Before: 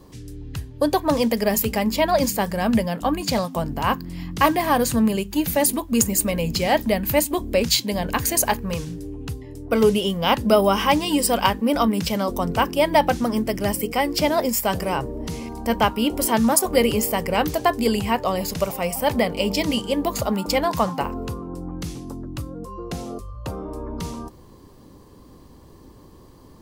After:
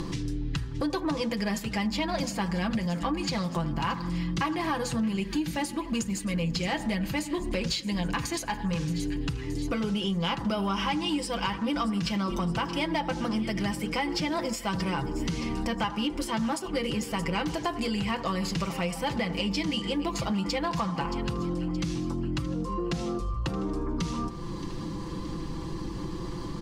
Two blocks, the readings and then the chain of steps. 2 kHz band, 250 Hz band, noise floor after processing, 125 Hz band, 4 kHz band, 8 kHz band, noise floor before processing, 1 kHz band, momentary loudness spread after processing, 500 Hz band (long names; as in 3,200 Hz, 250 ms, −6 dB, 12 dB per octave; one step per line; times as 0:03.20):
−6.5 dB, −5.5 dB, −37 dBFS, −2.5 dB, −6.0 dB, −13.5 dB, −47 dBFS, −9.5 dB, 5 LU, −12.0 dB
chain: comb filter 6 ms, depth 61%
upward compression, threshold −20 dBFS
parametric band 630 Hz −10 dB 0.64 octaves
hum removal 121.5 Hz, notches 16
on a send: echo with a time of its own for lows and highs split 1,600 Hz, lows 82 ms, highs 623 ms, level −16 dB
on the sum: downward compressor, threshold −24 dBFS, peak gain reduction 12 dB
soft clipping −19 dBFS, distortion −21 dB
low-pass filter 5,800 Hz 12 dB per octave
notch filter 450 Hz, Q 12